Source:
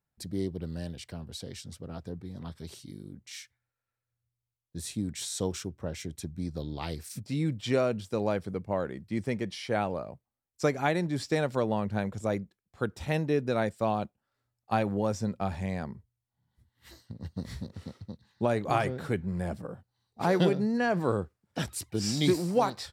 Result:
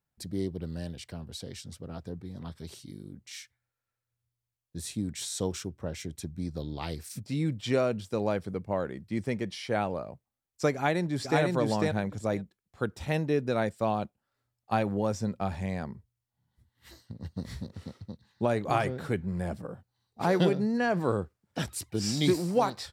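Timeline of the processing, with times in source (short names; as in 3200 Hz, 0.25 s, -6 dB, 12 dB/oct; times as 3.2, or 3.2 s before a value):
10.74–11.41 echo throw 0.5 s, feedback 10%, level -1.5 dB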